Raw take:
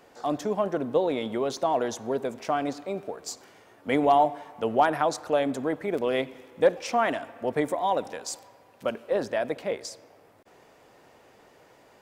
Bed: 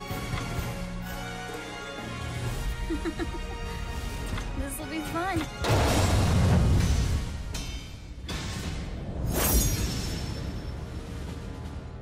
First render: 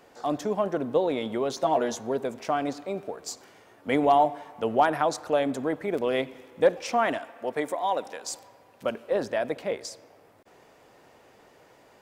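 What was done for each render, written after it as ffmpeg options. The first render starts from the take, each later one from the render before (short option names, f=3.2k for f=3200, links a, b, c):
-filter_complex "[0:a]asettb=1/sr,asplit=3[a][b][c];[a]atrim=end=1.564[d];[b]atrim=start=1.56:end=2.01,asetpts=PTS-STARTPTS,afade=t=in:d=0.004:c=qsin,afade=t=out:st=0.446:d=0.004:c=qsin,asplit=2[e][f];[f]adelay=13,volume=-4.5dB[g];[e][g]amix=inputs=2:normalize=0,atrim=end_sample=19845[h];[c]atrim=start=2.006[i];[d][h]acrossfade=d=0.004:c1=hsin:c2=qsin[j];[j][i]acrossfade=d=0.004:c1=qsin:c2=hsin,asettb=1/sr,asplit=3[k][l][m];[k]atrim=end=7.184[n];[l]atrim=start=7.18:end=8.24,asetpts=PTS-STARTPTS,afade=t=in:d=0.004:c=qsin,afade=t=out:st=1.056:d=0.004:c=qsin,highpass=f=420:p=1[o];[m]atrim=start=8.236[p];[n][o]acrossfade=d=0.004:c1=hsin:c2=qsin[q];[q][p]acrossfade=d=0.004:c1=qsin:c2=hsin"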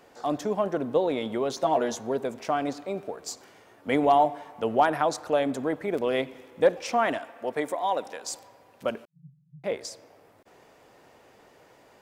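-filter_complex "[0:a]asettb=1/sr,asplit=3[a][b][c];[a]atrim=end=9.054[d];[b]atrim=start=9.05:end=9.64,asetpts=PTS-STARTPTS,afade=t=in:d=0.004:c=qsin,afade=t=out:st=0.586:d=0.004:c=qsin,asuperpass=centerf=150:order=20:qfactor=3.2[e];[c]atrim=start=9.636[f];[d][e]acrossfade=d=0.004:c1=hsin:c2=qsin[g];[g][f]acrossfade=d=0.004:c1=qsin:c2=hsin"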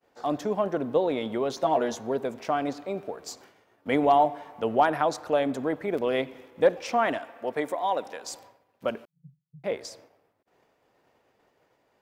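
-af "agate=range=-33dB:threshold=-47dB:ratio=3:detection=peak,equalizer=f=8.5k:w=0.92:g=-5"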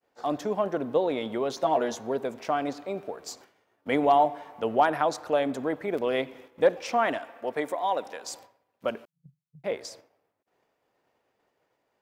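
-af "agate=range=-6dB:threshold=-49dB:ratio=16:detection=peak,lowshelf=f=240:g=-3.5"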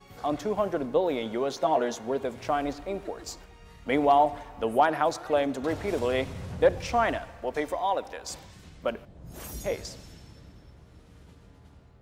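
-filter_complex "[1:a]volume=-16dB[a];[0:a][a]amix=inputs=2:normalize=0"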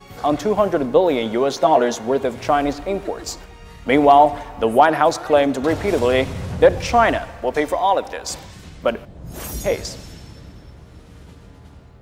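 -af "volume=10dB,alimiter=limit=-2dB:level=0:latency=1"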